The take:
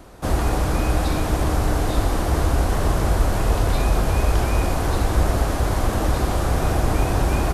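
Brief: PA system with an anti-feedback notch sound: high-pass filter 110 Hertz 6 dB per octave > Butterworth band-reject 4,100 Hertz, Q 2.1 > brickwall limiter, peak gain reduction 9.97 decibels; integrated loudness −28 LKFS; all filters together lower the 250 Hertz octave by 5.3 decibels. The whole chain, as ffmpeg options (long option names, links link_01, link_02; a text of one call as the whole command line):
ffmpeg -i in.wav -af "highpass=frequency=110:poles=1,asuperstop=centerf=4100:order=8:qfactor=2.1,equalizer=frequency=250:width_type=o:gain=-6.5,volume=3dB,alimiter=limit=-18.5dB:level=0:latency=1" out.wav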